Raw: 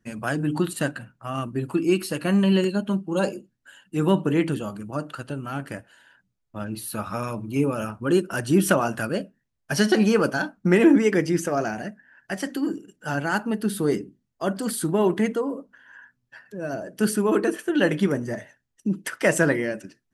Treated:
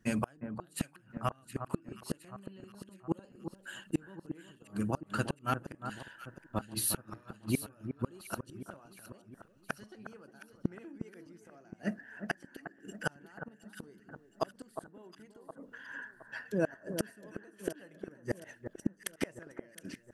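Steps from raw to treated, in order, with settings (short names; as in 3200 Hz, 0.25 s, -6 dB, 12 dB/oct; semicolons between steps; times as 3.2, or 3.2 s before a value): flipped gate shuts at -20 dBFS, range -37 dB; echo with dull and thin repeats by turns 0.358 s, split 1600 Hz, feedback 67%, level -8.5 dB; gain +3 dB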